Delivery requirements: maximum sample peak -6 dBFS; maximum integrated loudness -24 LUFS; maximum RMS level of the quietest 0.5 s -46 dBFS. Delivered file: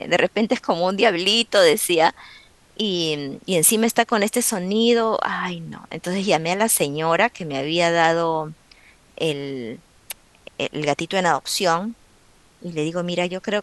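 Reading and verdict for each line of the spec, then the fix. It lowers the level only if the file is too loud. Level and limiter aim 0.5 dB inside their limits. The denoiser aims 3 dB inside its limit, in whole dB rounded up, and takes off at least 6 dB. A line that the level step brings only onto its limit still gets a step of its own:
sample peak -2.0 dBFS: fail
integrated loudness -20.0 LUFS: fail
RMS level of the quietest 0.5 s -54 dBFS: pass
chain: trim -4.5 dB

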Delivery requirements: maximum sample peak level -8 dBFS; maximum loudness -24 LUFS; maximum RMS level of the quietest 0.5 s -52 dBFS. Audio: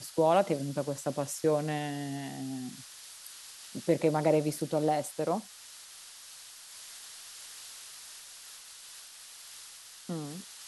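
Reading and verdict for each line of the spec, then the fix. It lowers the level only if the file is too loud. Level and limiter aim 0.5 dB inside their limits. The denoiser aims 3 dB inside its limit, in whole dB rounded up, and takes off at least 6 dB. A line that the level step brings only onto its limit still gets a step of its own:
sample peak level -13.5 dBFS: pass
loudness -31.5 LUFS: pass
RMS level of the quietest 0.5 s -50 dBFS: fail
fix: noise reduction 6 dB, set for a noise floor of -50 dBFS

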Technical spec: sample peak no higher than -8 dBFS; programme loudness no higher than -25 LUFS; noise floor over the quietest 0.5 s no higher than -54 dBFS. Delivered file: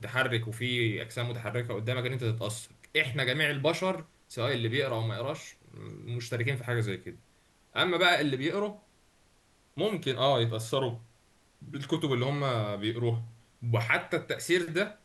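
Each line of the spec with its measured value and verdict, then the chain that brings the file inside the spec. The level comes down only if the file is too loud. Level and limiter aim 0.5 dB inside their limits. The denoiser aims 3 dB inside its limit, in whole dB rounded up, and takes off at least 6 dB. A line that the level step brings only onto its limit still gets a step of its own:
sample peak -12.0 dBFS: pass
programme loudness -30.0 LUFS: pass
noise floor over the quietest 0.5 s -65 dBFS: pass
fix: none needed

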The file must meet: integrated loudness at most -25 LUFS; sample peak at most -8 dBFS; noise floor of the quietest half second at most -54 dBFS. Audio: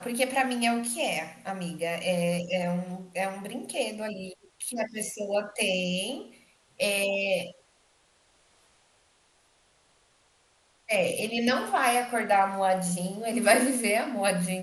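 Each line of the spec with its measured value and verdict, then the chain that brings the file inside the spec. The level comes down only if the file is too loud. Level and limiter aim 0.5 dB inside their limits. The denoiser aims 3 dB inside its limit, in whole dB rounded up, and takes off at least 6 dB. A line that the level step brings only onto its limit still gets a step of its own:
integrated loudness -27.5 LUFS: pass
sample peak -6.5 dBFS: fail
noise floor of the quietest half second -65 dBFS: pass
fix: peak limiter -8.5 dBFS

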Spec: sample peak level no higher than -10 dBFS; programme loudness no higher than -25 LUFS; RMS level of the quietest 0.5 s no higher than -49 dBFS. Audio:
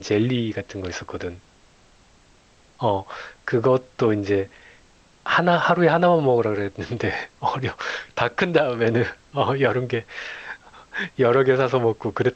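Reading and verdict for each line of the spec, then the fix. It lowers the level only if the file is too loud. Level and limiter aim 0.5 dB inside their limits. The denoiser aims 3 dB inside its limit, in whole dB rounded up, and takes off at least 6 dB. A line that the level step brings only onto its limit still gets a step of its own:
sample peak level -3.0 dBFS: fail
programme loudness -22.0 LUFS: fail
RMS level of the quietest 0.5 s -55 dBFS: pass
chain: trim -3.5 dB; peak limiter -10.5 dBFS

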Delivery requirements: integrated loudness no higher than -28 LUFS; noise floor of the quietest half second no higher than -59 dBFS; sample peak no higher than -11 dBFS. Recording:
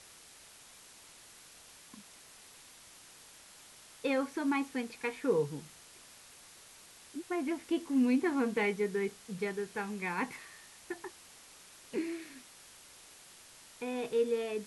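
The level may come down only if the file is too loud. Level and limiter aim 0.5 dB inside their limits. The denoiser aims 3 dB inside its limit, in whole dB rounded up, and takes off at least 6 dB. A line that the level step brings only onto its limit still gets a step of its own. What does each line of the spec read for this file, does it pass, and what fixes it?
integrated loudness -34.5 LUFS: pass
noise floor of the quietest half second -56 dBFS: fail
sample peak -19.0 dBFS: pass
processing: noise reduction 6 dB, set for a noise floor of -56 dBFS

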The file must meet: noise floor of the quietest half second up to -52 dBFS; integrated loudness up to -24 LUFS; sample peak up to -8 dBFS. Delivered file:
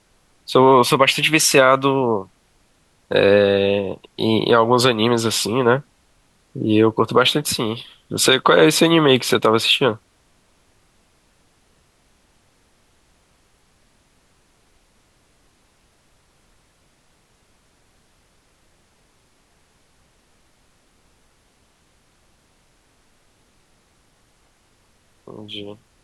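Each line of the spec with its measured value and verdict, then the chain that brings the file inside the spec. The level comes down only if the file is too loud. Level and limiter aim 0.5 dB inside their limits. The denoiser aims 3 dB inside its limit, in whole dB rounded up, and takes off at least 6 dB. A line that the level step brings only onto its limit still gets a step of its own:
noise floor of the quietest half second -59 dBFS: pass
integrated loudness -16.0 LUFS: fail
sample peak -2.0 dBFS: fail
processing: trim -8.5 dB

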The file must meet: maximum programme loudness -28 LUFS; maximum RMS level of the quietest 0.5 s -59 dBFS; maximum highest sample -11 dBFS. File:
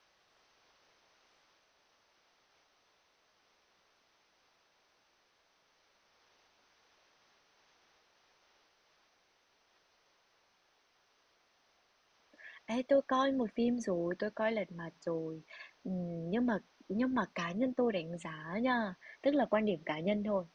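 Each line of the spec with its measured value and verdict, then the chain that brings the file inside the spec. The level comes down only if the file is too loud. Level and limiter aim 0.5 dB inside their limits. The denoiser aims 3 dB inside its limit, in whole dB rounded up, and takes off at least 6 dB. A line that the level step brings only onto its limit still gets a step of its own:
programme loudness -35.0 LUFS: pass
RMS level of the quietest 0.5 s -73 dBFS: pass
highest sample -17.0 dBFS: pass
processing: none needed

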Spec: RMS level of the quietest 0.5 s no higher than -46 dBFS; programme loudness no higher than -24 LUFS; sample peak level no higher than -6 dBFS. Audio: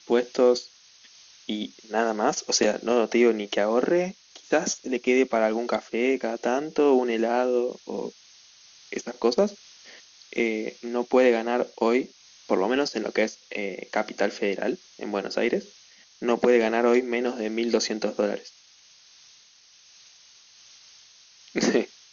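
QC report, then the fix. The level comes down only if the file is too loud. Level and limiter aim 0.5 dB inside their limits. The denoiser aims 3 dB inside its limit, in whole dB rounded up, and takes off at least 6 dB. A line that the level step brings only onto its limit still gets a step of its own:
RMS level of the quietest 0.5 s -55 dBFS: pass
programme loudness -25.0 LUFS: pass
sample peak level -7.0 dBFS: pass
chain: none needed

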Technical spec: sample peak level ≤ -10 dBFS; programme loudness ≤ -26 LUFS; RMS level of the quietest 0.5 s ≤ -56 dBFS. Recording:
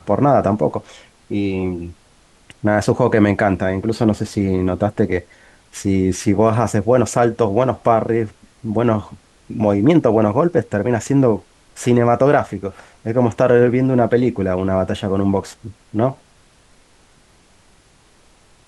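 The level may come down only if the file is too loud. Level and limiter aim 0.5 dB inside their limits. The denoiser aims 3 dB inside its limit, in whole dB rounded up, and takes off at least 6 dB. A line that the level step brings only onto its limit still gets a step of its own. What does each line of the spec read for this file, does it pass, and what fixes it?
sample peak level -2.0 dBFS: fail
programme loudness -17.5 LUFS: fail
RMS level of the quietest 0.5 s -52 dBFS: fail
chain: trim -9 dB

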